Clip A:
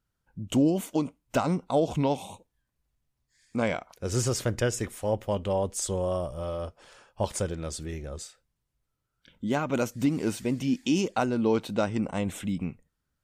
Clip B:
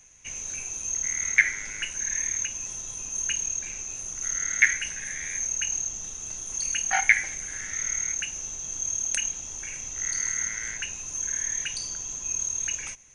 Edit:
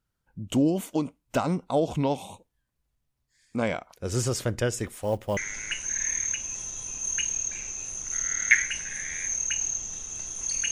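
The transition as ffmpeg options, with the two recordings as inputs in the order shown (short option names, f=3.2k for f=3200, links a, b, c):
-filter_complex "[0:a]asettb=1/sr,asplit=3[a][b][c];[a]atrim=end=4.864[d];[b]atrim=start=4.86:end=5.37,asetpts=PTS-STARTPTS,afade=t=in:d=0.004:c=qsin,afade=t=out:st=0.506:d=0.004:c=qsin,acrusher=bits=7:mode=log:mix=0:aa=0.000001[e];[c]atrim=start=5.366[f];[d][e]acrossfade=d=0.004:c1=hsin:c2=qsin[g];[g][f]acrossfade=d=0.004:c1=qsin:c2=hsin,apad=whole_dur=10.71,atrim=end=10.71,atrim=end=5.372[h];[1:a]atrim=start=1.478:end=6.82[i];[h][i]acrossfade=d=0.004:c1=hsin:c2=hsin"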